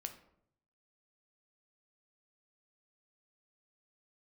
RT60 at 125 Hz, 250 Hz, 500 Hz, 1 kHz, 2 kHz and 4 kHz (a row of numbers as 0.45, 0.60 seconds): 1.1, 0.80, 0.75, 0.65, 0.50, 0.40 seconds